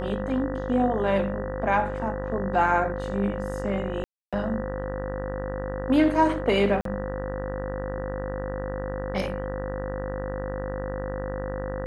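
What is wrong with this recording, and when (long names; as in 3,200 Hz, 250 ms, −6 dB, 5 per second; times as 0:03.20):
mains buzz 50 Hz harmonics 39 −33 dBFS
whistle 520 Hz −32 dBFS
0:04.04–0:04.33: drop-out 286 ms
0:06.81–0:06.85: drop-out 43 ms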